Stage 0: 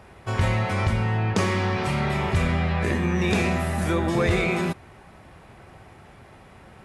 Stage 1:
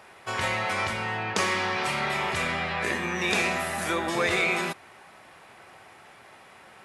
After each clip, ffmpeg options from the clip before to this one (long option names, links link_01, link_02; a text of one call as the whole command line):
ffmpeg -i in.wav -af "highpass=frequency=1000:poles=1,volume=3.5dB" out.wav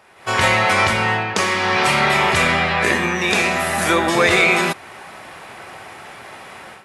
ffmpeg -i in.wav -af "dynaudnorm=framelen=160:gausssize=3:maxgain=14.5dB,volume=-1dB" out.wav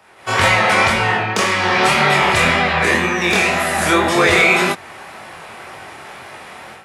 ffmpeg -i in.wav -filter_complex "[0:a]flanger=delay=20:depth=7:speed=1.9,acrossover=split=270|480|2500[link_01][link_02][link_03][link_04];[link_04]volume=20dB,asoftclip=hard,volume=-20dB[link_05];[link_01][link_02][link_03][link_05]amix=inputs=4:normalize=0,volume=5dB" out.wav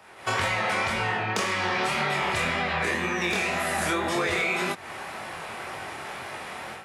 ffmpeg -i in.wav -af "acompressor=threshold=-23dB:ratio=5,volume=-1.5dB" out.wav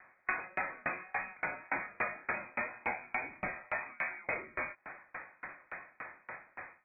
ffmpeg -i in.wav -af "lowpass=frequency=2200:width_type=q:width=0.5098,lowpass=frequency=2200:width_type=q:width=0.6013,lowpass=frequency=2200:width_type=q:width=0.9,lowpass=frequency=2200:width_type=q:width=2.563,afreqshift=-2600,bandreject=frequency=420:width=12,aeval=exprs='val(0)*pow(10,-32*if(lt(mod(3.5*n/s,1),2*abs(3.5)/1000),1-mod(3.5*n/s,1)/(2*abs(3.5)/1000),(mod(3.5*n/s,1)-2*abs(3.5)/1000)/(1-2*abs(3.5)/1000))/20)':channel_layout=same,volume=-2.5dB" out.wav